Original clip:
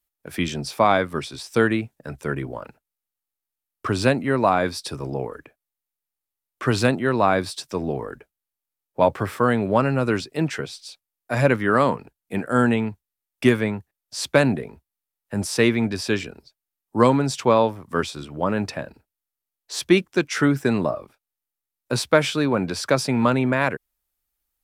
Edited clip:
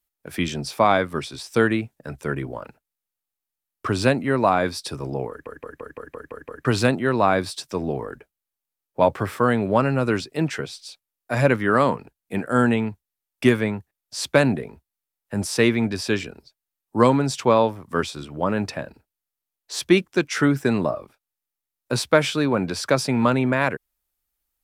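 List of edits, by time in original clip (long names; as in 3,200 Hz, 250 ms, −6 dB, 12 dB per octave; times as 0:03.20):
0:05.29: stutter in place 0.17 s, 8 plays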